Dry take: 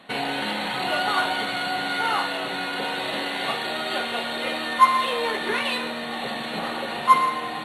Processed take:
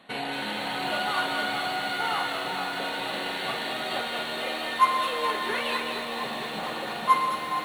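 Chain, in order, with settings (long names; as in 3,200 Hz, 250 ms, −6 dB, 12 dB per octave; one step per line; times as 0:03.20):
echo with a time of its own for lows and highs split 1,100 Hz, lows 463 ms, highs 208 ms, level −5.5 dB
feedback echo at a low word length 231 ms, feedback 80%, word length 6 bits, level −12.5 dB
level −5 dB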